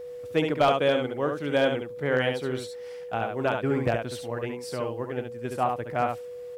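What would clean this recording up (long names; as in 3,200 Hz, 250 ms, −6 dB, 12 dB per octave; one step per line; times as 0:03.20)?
clipped peaks rebuilt −13 dBFS
notch filter 490 Hz, Q 30
echo removal 70 ms −5 dB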